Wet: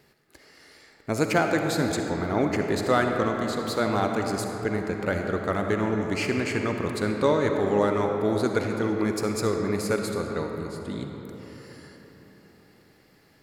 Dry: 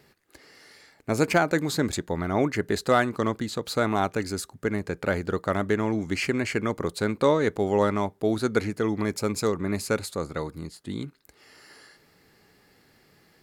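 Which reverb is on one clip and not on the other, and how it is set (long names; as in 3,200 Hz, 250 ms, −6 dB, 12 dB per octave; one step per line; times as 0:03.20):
comb and all-pass reverb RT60 4.3 s, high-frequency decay 0.45×, pre-delay 20 ms, DRR 3 dB
level −1.5 dB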